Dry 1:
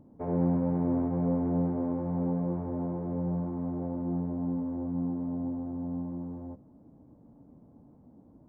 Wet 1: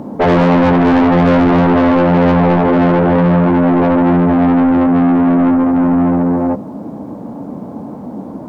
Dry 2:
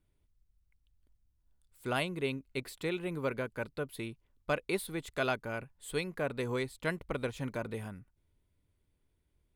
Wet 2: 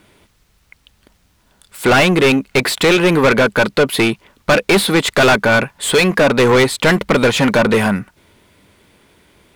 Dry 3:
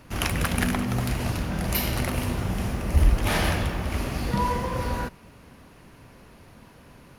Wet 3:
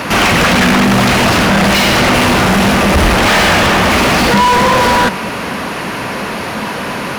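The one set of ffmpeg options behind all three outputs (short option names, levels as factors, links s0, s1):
-filter_complex "[0:a]acrossover=split=7000[s0][s1];[s1]acompressor=threshold=0.00501:ratio=4:attack=1:release=60[s2];[s0][s2]amix=inputs=2:normalize=0,equalizer=f=200:w=5.3:g=7.5,asplit=2[s3][s4];[s4]highpass=f=720:p=1,volume=79.4,asoftclip=type=tanh:threshold=0.422[s5];[s3][s5]amix=inputs=2:normalize=0,lowpass=f=3800:p=1,volume=0.501,volume=1.78"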